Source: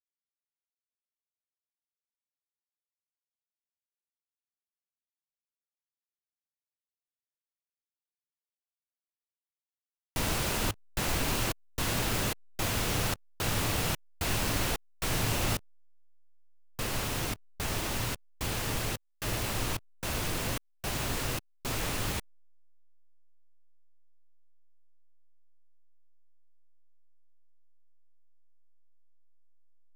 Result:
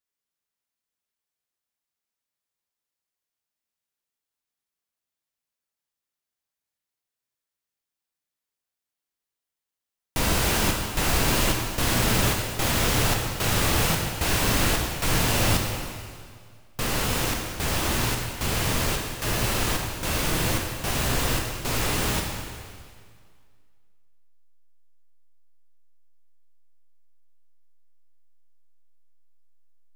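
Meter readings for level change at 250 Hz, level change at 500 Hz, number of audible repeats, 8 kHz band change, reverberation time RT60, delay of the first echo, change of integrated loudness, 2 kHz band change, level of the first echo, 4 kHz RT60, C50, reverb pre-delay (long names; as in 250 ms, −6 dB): +8.0 dB, +8.0 dB, no echo audible, +8.0 dB, 2.0 s, no echo audible, +8.0 dB, +8.0 dB, no echo audible, 1.9 s, 3.0 dB, 7 ms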